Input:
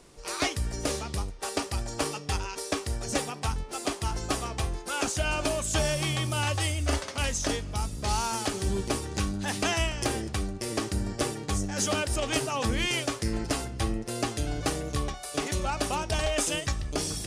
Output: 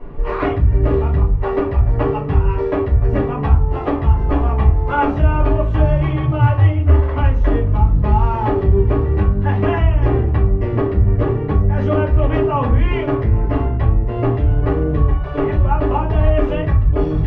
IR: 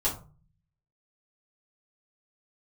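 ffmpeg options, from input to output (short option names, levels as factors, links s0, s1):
-filter_complex "[0:a]lowpass=f=2200:w=0.5412,lowpass=f=2200:w=1.3066,lowshelf=f=470:g=7.5,acompressor=threshold=0.0224:ratio=2.5,asettb=1/sr,asplit=3[s0][s1][s2];[s0]atrim=end=3.334[s3];[s1]atrim=start=3.33:end=5.4,asetpts=PTS-STARTPTS,afade=t=in:d=0.004:c=qsin,afade=t=out:st=2.066:d=0.004:c=qsin,asplit=2[s4][s5];[s5]adelay=14,volume=0.596[s6];[s4][s6]amix=inputs=2:normalize=0,atrim=end_sample=91287[s7];[s2]atrim=start=5.396[s8];[s3][s7]acrossfade=d=0.004:c1=hsin:c2=qsin[s9];[s9][s8]acrossfade=d=0.004:c1=qsin:c2=hsin[s10];[1:a]atrim=start_sample=2205[s11];[s10][s11]afir=irnorm=-1:irlink=0,volume=1.78"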